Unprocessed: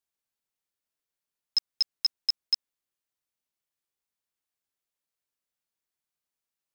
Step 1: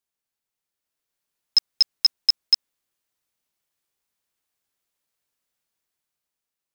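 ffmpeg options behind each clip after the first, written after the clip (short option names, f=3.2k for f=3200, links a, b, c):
-af "dynaudnorm=f=230:g=9:m=6.5dB,volume=1.5dB"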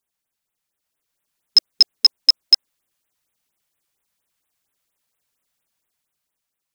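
-af "afftfilt=real='re*(1-between(b*sr/1024,300*pow(5800/300,0.5+0.5*sin(2*PI*4.3*pts/sr))/1.41,300*pow(5800/300,0.5+0.5*sin(2*PI*4.3*pts/sr))*1.41))':imag='im*(1-between(b*sr/1024,300*pow(5800/300,0.5+0.5*sin(2*PI*4.3*pts/sr))/1.41,300*pow(5800/300,0.5+0.5*sin(2*PI*4.3*pts/sr))*1.41))':win_size=1024:overlap=0.75,volume=5.5dB"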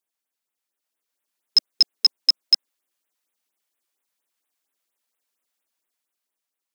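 -af "highpass=f=230:w=0.5412,highpass=f=230:w=1.3066,volume=-4dB"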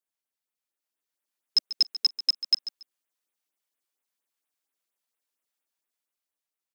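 -af "aecho=1:1:141|282:0.2|0.0419,volume=-6dB"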